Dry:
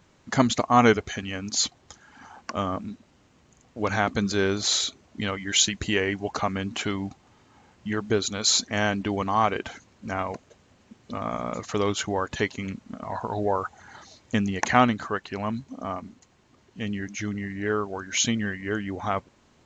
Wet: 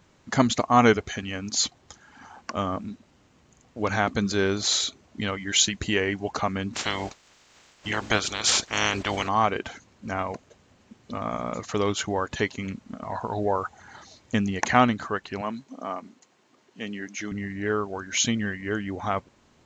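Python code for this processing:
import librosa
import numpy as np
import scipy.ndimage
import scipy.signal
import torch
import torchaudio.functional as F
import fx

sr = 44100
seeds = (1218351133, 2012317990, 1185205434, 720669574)

y = fx.spec_clip(x, sr, under_db=24, at=(6.73, 9.27), fade=0.02)
y = fx.highpass(y, sr, hz=250.0, slope=12, at=(15.41, 17.32))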